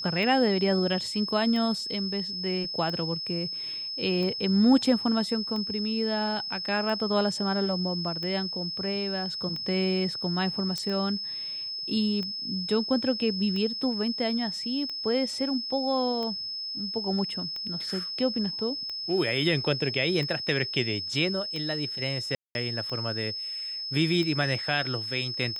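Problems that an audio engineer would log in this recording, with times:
scratch tick 45 rpm −23 dBFS
whistle 5,200 Hz −32 dBFS
0:10.78: click −18 dBFS
0:22.35–0:22.55: drop-out 201 ms

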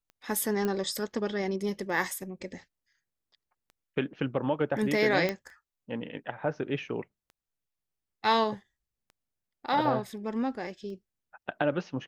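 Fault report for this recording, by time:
scratch tick 33 1/3 rpm −37 dBFS
0:00.65: click −18 dBFS
0:05.29: click −15 dBFS

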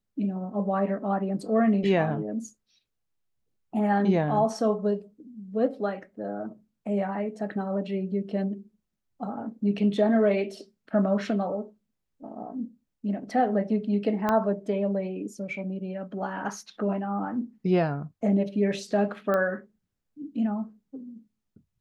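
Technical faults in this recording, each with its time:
0:14.29: click −13 dBFS
0:19.34: click −16 dBFS

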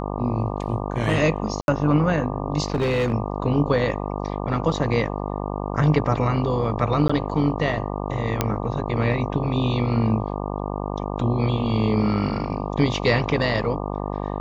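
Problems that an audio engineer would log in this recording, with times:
mains buzz 50 Hz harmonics 24 −28 dBFS
0:01.61–0:01.68: drop-out 71 ms
0:02.66–0:03.14: clipping −17.5 dBFS
0:07.08–0:07.09: drop-out 15 ms
0:08.41: click −5 dBFS

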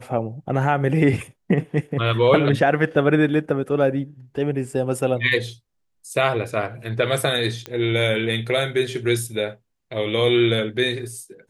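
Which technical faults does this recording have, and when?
0:07.66: click −15 dBFS

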